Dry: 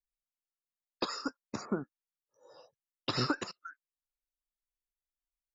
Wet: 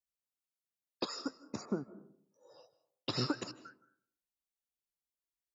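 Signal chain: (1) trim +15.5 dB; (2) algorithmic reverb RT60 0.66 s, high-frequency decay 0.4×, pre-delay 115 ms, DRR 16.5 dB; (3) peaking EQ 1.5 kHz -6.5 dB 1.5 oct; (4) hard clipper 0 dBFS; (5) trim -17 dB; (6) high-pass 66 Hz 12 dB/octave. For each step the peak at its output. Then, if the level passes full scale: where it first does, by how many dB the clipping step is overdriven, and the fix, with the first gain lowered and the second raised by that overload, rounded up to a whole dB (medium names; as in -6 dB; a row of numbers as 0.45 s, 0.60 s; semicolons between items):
-3.5 dBFS, -3.0 dBFS, -4.5 dBFS, -4.5 dBFS, -21.5 dBFS, -21.5 dBFS; nothing clips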